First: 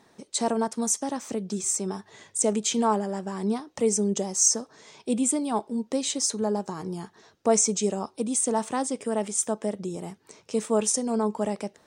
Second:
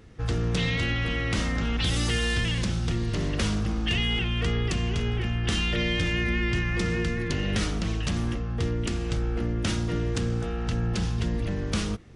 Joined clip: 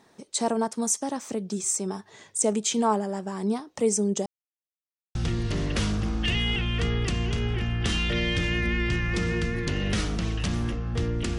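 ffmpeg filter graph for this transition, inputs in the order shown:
ffmpeg -i cue0.wav -i cue1.wav -filter_complex "[0:a]apad=whole_dur=11.38,atrim=end=11.38,asplit=2[link_01][link_02];[link_01]atrim=end=4.26,asetpts=PTS-STARTPTS,afade=type=out:start_time=4.256:duration=0.004:curve=hsin[link_03];[link_02]atrim=start=4.26:end=5.15,asetpts=PTS-STARTPTS,volume=0[link_04];[1:a]atrim=start=2.78:end=9.01,asetpts=PTS-STARTPTS,afade=type=in:duration=0.004:curve=hsin[link_05];[link_03][link_04][link_05]concat=n=3:v=0:a=1" out.wav

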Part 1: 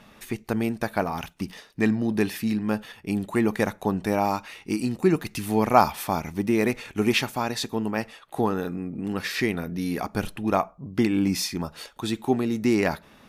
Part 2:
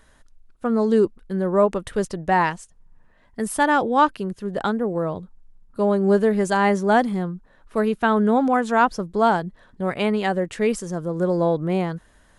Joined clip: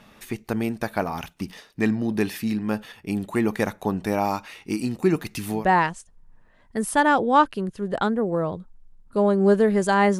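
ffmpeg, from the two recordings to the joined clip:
ffmpeg -i cue0.wav -i cue1.wav -filter_complex "[0:a]apad=whole_dur=10.19,atrim=end=10.19,atrim=end=5.66,asetpts=PTS-STARTPTS[link_01];[1:a]atrim=start=2.13:end=6.82,asetpts=PTS-STARTPTS[link_02];[link_01][link_02]acrossfade=duration=0.16:curve1=tri:curve2=tri" out.wav

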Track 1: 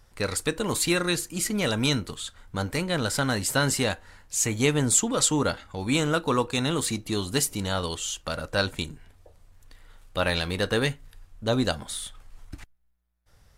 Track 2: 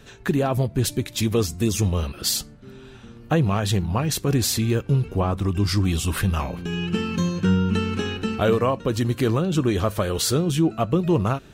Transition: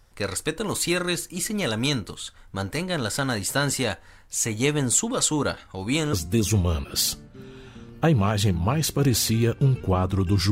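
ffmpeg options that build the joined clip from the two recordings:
ffmpeg -i cue0.wav -i cue1.wav -filter_complex "[0:a]apad=whole_dur=10.51,atrim=end=10.51,atrim=end=6.132[link_01];[1:a]atrim=start=1.408:end=5.79[link_02];[link_01][link_02]acrossfade=duration=0.004:curve1=hsin:curve2=hsin" out.wav

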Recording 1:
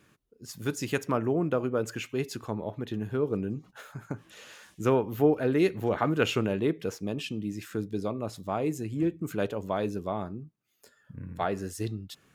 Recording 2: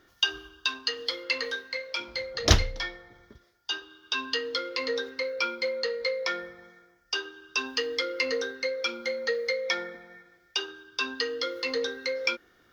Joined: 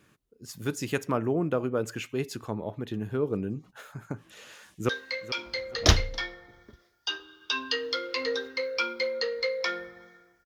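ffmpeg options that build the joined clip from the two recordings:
ffmpeg -i cue0.wav -i cue1.wav -filter_complex "[0:a]apad=whole_dur=10.45,atrim=end=10.45,atrim=end=4.892[link_01];[1:a]atrim=start=1.508:end=7.07[link_02];[link_01][link_02]acrossfade=duration=0.004:curve1=hsin:curve2=hsin,asplit=2[link_03][link_04];[link_04]afade=type=in:start_time=4.45:duration=0.01,afade=type=out:start_time=4.89:duration=0.01,aecho=0:1:430|860|1290:0.177828|0.0533484|0.0160045[link_05];[link_03][link_05]amix=inputs=2:normalize=0" out.wav

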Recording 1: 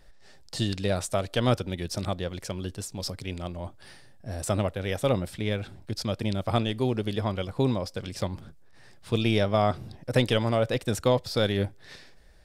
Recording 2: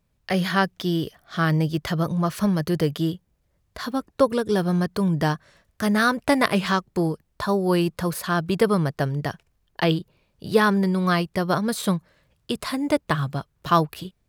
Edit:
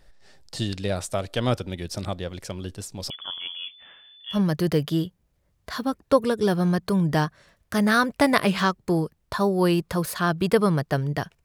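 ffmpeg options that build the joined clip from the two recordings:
ffmpeg -i cue0.wav -i cue1.wav -filter_complex "[0:a]asettb=1/sr,asplit=3[link_01][link_02][link_03];[link_01]atrim=end=3.104[link_04];[link_02]atrim=start=3.1:end=4.4,asetpts=PTS-STARTPTS,afade=type=in:duration=0.004:curve=qsin,afade=type=out:start_time=1.296:duration=0.004:curve=qsin,lowpass=frequency=3000:width_type=q:width=0.5098,lowpass=frequency=3000:width_type=q:width=0.6013,lowpass=frequency=3000:width_type=q:width=0.9,lowpass=frequency=3000:width_type=q:width=2.563,afreqshift=-3500[link_05];[link_03]atrim=start=4.396[link_06];[link_04][link_05]acrossfade=duration=0.004:curve1=hsin:curve2=qsin[link_07];[link_07][link_06]acrossfade=duration=0.004:curve1=qsin:curve2=hsin,apad=whole_dur=11.44,atrim=end=11.44,atrim=end=4.4,asetpts=PTS-STARTPTS[link_08];[1:a]atrim=start=2.38:end=9.52,asetpts=PTS-STARTPTS[link_09];[link_08][link_09]acrossfade=duration=0.1:curve1=tri:curve2=tri" out.wav

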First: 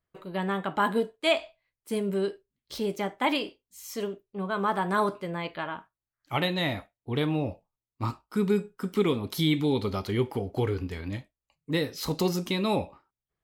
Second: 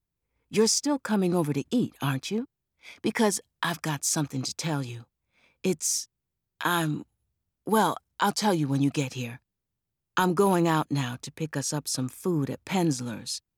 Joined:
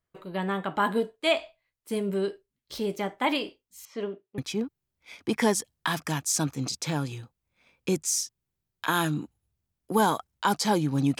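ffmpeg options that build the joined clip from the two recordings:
ffmpeg -i cue0.wav -i cue1.wav -filter_complex "[0:a]asettb=1/sr,asplit=3[link_01][link_02][link_03];[link_01]atrim=end=3.854[link_04];[link_02]atrim=start=3.85:end=4.38,asetpts=PTS-STARTPTS,afade=type=in:duration=0.004:curve=qsin,afade=type=out:start_time=0.526:duration=0.004:curve=qsin,highpass=160,lowpass=2800[link_05];[link_03]atrim=start=4.376[link_06];[link_04][link_05]acrossfade=duration=0.004:curve1=hsin:curve2=qsin[link_07];[link_07][link_06]acrossfade=duration=0.004:curve1=qsin:curve2=hsin,apad=whole_dur=11.19,atrim=end=11.19,atrim=end=4.382[link_08];[1:a]atrim=start=2.148:end=8.96[link_09];[link_08][link_09]acrossfade=duration=0.004:curve1=hsin:curve2=hsin" out.wav

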